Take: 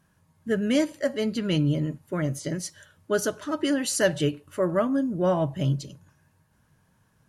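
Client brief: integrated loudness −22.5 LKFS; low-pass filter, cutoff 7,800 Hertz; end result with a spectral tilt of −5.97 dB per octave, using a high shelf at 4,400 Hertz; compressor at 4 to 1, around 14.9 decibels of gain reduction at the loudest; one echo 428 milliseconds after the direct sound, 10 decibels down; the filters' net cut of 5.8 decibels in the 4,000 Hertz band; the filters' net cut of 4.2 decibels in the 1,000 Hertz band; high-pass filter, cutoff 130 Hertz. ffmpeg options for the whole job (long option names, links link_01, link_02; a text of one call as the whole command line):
ffmpeg -i in.wav -af "highpass=130,lowpass=7800,equalizer=frequency=1000:width_type=o:gain=-5,equalizer=frequency=4000:width_type=o:gain=-3.5,highshelf=frequency=4400:gain=-8.5,acompressor=threshold=-37dB:ratio=4,aecho=1:1:428:0.316,volume=17dB" out.wav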